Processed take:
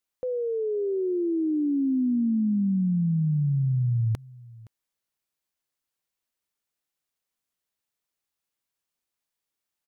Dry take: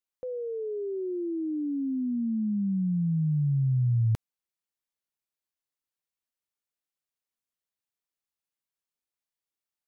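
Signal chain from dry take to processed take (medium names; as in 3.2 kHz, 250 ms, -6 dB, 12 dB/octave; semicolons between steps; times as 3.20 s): peak limiter -26 dBFS, peak gain reduction 6 dB; on a send: delay 518 ms -22 dB; on the sum: trim +5.5 dB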